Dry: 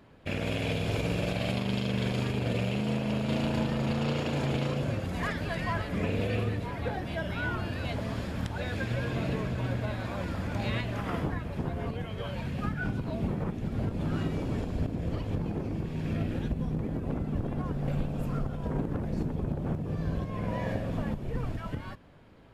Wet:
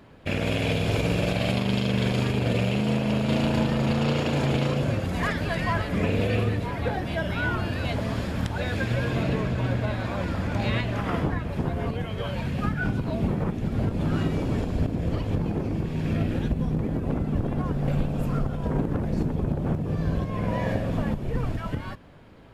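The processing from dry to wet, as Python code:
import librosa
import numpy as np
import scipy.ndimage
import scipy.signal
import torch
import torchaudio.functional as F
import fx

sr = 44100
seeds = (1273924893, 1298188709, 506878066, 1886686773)

y = fx.high_shelf(x, sr, hz=8300.0, db=-5.5, at=(9.23, 11.49))
y = F.gain(torch.from_numpy(y), 5.5).numpy()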